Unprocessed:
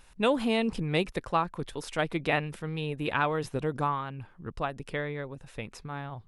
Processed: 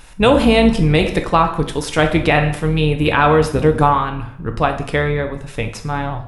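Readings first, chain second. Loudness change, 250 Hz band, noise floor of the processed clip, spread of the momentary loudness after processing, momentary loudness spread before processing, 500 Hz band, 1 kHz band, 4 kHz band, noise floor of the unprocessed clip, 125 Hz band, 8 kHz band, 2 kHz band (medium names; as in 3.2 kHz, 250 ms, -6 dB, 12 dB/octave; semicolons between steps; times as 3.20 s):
+14.5 dB, +15.0 dB, -35 dBFS, 12 LU, 13 LU, +15.0 dB, +14.5 dB, +13.5 dB, -56 dBFS, +16.5 dB, +15.0 dB, +13.0 dB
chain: octave divider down 2 oct, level -5 dB; plate-style reverb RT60 0.63 s, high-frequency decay 0.85×, DRR 5 dB; loudness maximiser +15 dB; trim -1 dB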